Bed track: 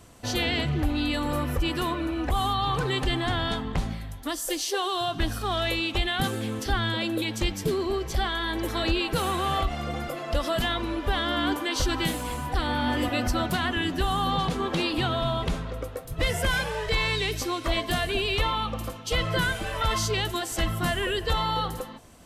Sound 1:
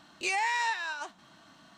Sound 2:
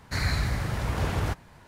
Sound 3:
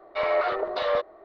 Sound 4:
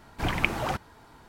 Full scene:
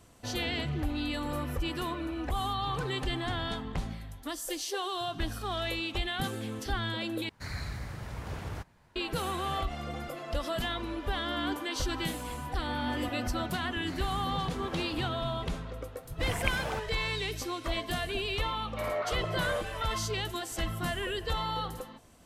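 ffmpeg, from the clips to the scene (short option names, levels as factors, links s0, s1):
-filter_complex "[2:a]asplit=2[s0][s1];[0:a]volume=0.473,asplit=2[s2][s3];[s2]atrim=end=7.294[s4];[s0]atrim=end=1.67,asetpts=PTS-STARTPTS,volume=0.282[s5];[s3]atrim=start=8.956[s6];[s1]atrim=end=1.67,asetpts=PTS-STARTPTS,volume=0.158,afade=t=in:d=0.004:c=hsin,afade=t=out:st=1.666:d=0.004:c=hsin,adelay=13750[s7];[4:a]atrim=end=1.28,asetpts=PTS-STARTPTS,volume=0.422,afade=t=in:d=0.004:c=hsin,afade=t=out:st=1.276:d=0.004:c=hsin,adelay=16030[s8];[3:a]atrim=end=1.24,asetpts=PTS-STARTPTS,volume=0.355,afade=t=in:d=0.004:c=hsin,afade=t=out:st=1.236:d=0.004:c=hsin,adelay=18610[s9];[s4][s5]acrossfade=d=0.004:c1=hsin:c2=hsin[s10];[s10][s6]acrossfade=d=0.004:c1=hsin:c2=hsin[s11];[s11][s7][s8][s9]amix=inputs=4:normalize=0"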